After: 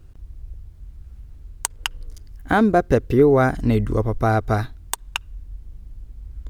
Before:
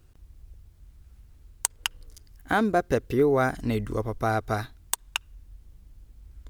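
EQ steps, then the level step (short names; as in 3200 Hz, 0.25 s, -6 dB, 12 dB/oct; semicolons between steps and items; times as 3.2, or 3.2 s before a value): tilt -1.5 dB/oct; +5.0 dB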